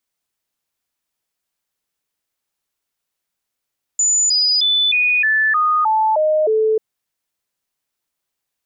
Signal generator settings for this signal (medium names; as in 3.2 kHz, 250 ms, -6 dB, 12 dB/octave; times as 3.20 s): stepped sine 6.99 kHz down, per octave 2, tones 9, 0.31 s, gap 0.00 s -12.5 dBFS